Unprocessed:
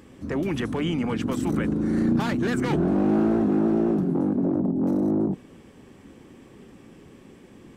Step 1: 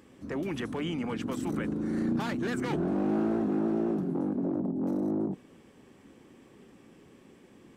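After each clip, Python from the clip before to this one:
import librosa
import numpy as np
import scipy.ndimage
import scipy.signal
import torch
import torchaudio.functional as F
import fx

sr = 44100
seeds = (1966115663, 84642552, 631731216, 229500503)

y = fx.low_shelf(x, sr, hz=120.0, db=-8.0)
y = y * librosa.db_to_amplitude(-5.5)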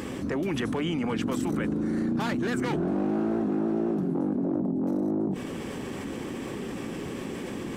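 y = fx.env_flatten(x, sr, amount_pct=70)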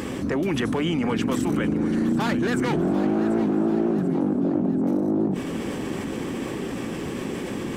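y = fx.echo_feedback(x, sr, ms=738, feedback_pct=49, wet_db=-13.5)
y = y * librosa.db_to_amplitude(4.5)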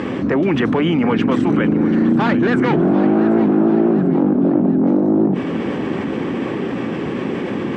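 y = fx.bandpass_edges(x, sr, low_hz=110.0, high_hz=2700.0)
y = y * librosa.db_to_amplitude(8.0)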